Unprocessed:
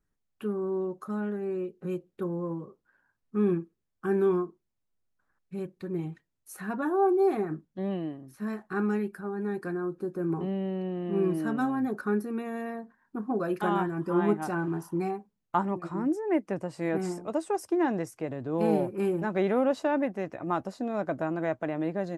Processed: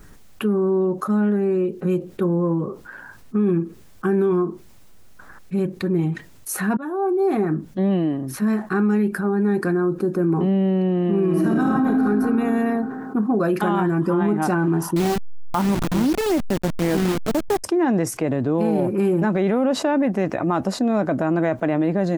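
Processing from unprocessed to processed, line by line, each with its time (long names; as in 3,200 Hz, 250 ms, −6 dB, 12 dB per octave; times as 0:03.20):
0:06.77–0:07.65: fade in
0:11.25–0:12.04: thrown reverb, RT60 2.3 s, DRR −1.5 dB
0:14.96–0:17.64: hold until the input has moved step −30.5 dBFS
whole clip: dynamic equaliser 220 Hz, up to +5 dB, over −42 dBFS, Q 1.6; brickwall limiter −21 dBFS; envelope flattener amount 50%; level +7.5 dB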